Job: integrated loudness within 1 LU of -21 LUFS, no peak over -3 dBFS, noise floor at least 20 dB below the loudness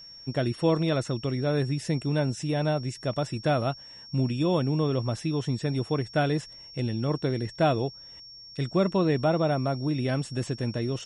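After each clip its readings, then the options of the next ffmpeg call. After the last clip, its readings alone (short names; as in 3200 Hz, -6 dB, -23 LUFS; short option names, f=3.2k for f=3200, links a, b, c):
steady tone 5500 Hz; tone level -44 dBFS; loudness -27.5 LUFS; peak -11.5 dBFS; loudness target -21.0 LUFS
-> -af "bandreject=f=5.5k:w=30"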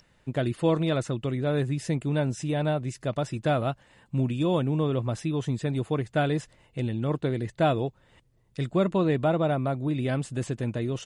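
steady tone none; loudness -27.5 LUFS; peak -11.5 dBFS; loudness target -21.0 LUFS
-> -af "volume=6.5dB"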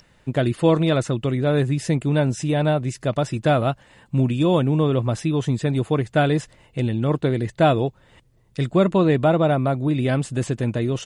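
loudness -21.0 LUFS; peak -5.0 dBFS; noise floor -57 dBFS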